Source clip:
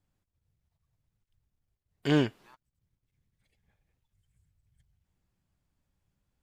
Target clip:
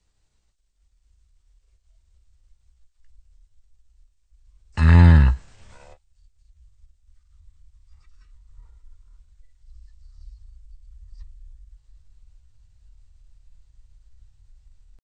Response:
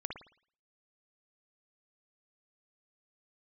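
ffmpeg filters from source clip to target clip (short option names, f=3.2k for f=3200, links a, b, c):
-filter_complex "[0:a]aemphasis=mode=production:type=cd,asetrate=58866,aresample=44100,atempo=0.749154,acrossover=split=150|2100[a][b][c];[a]acontrast=38[d];[d][b][c]amix=inputs=3:normalize=0,asubboost=boost=10:cutoff=200,asetrate=18846,aresample=44100,volume=7dB"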